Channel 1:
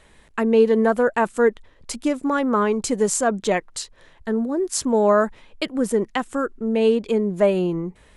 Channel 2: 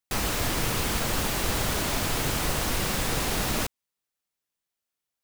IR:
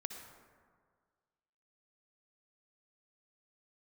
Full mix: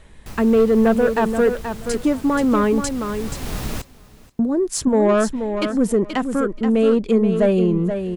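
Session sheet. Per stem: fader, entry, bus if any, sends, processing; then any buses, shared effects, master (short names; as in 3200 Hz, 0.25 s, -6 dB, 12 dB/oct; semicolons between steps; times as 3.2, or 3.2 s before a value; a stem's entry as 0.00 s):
+0.5 dB, 0.00 s, muted 2.89–4.39, no send, echo send -8 dB, soft clip -13 dBFS, distortion -16 dB
-4.5 dB, 0.15 s, no send, echo send -21 dB, auto duck -11 dB, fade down 0.40 s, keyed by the first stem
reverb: off
echo: feedback echo 0.479 s, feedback 16%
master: low shelf 260 Hz +10 dB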